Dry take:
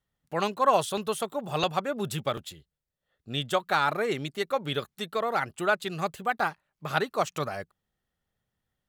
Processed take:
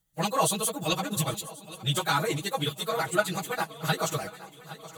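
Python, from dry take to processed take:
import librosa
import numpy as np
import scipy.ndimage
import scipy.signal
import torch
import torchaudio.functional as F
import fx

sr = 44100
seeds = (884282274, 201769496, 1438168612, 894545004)

y = fx.bass_treble(x, sr, bass_db=5, treble_db=14)
y = fx.notch(y, sr, hz=5300.0, q=7.7)
y = fx.stretch_vocoder_free(y, sr, factor=0.56)
y = y + 0.84 * np.pad(y, (int(6.2 * sr / 1000.0), 0))[:len(y)]
y = fx.echo_swing(y, sr, ms=1088, ratio=3, feedback_pct=47, wet_db=-17.0)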